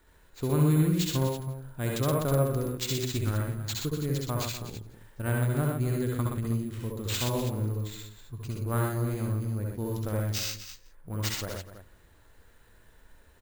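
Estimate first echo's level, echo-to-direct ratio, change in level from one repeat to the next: -2.0 dB, 1.5 dB, no steady repeat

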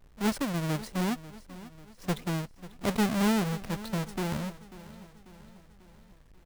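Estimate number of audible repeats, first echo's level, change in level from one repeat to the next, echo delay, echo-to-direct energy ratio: 4, -17.0 dB, -5.5 dB, 0.542 s, -15.5 dB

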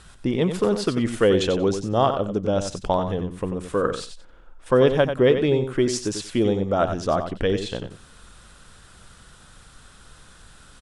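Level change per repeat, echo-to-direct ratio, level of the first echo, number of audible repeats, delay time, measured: -16.0 dB, -8.5 dB, -8.5 dB, 2, 92 ms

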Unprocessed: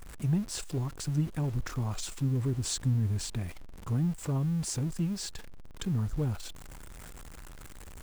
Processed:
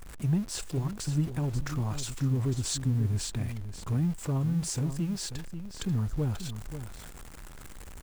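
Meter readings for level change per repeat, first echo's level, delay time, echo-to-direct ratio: no steady repeat, -10.5 dB, 0.538 s, -10.5 dB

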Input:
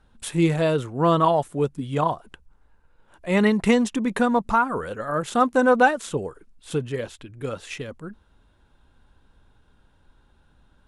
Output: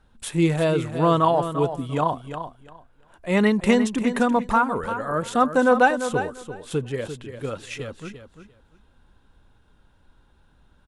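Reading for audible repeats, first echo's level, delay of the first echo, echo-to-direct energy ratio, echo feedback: 2, -10.0 dB, 0.345 s, -10.0 dB, 18%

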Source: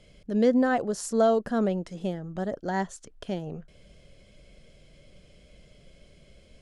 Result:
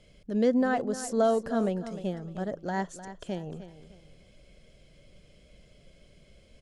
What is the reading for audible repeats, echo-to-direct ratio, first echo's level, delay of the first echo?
3, -12.5 dB, -13.0 dB, 0.304 s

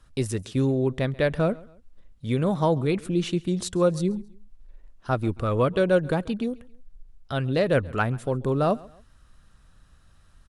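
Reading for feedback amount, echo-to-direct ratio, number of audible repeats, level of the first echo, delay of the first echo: 36%, -22.5 dB, 2, -23.0 dB, 0.136 s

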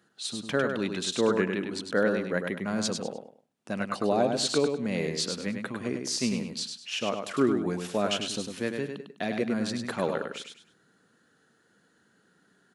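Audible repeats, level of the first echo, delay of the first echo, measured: 3, -5.5 dB, 0.101 s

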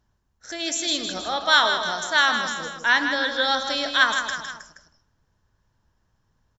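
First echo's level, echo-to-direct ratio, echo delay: -7.5 dB, -6.0 dB, 0.158 s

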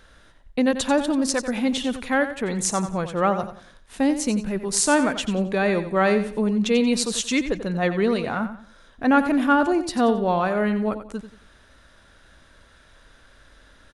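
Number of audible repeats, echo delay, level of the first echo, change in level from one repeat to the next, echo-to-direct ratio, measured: 3, 90 ms, -11.0 dB, -10.0 dB, -10.5 dB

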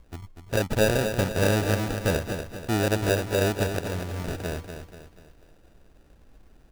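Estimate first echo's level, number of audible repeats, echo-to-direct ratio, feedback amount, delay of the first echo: -8.0 dB, 4, -7.0 dB, 44%, 0.242 s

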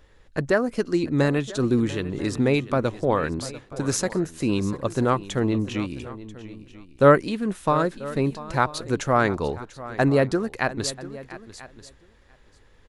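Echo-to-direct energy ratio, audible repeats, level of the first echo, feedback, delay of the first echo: -14.5 dB, 2, -16.5 dB, no steady repeat, 0.694 s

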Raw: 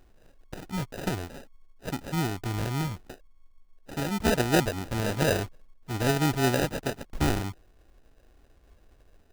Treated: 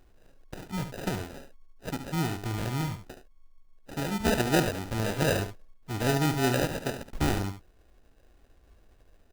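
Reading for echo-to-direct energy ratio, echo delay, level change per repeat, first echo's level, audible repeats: -9.0 dB, 72 ms, no steady repeat, -9.0 dB, 1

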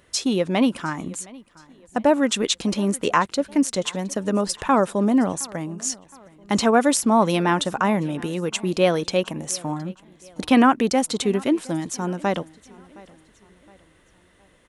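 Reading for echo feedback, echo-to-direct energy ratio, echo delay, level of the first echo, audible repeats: 43%, -22.0 dB, 0.716 s, -23.0 dB, 2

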